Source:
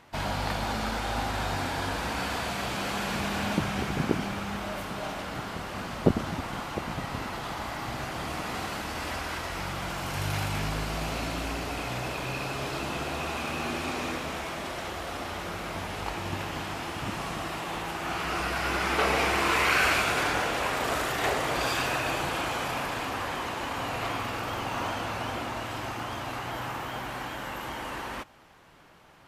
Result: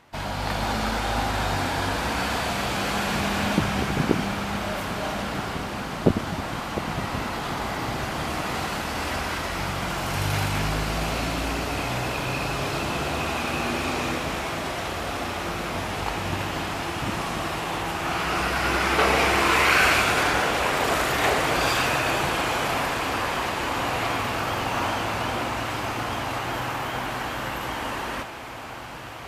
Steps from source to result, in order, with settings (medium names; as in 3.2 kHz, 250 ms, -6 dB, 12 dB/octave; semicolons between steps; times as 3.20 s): level rider gain up to 5 dB; echo that smears into a reverb 1688 ms, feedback 68%, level -12 dB